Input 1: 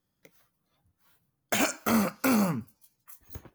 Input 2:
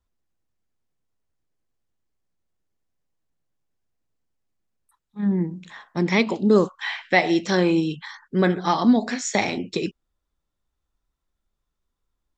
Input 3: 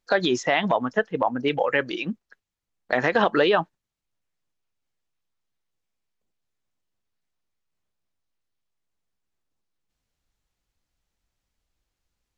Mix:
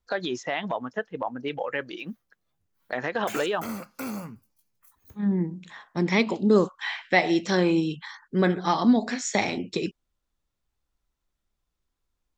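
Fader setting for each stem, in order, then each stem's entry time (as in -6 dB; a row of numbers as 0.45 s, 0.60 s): -9.5 dB, -2.5 dB, -7.5 dB; 1.75 s, 0.00 s, 0.00 s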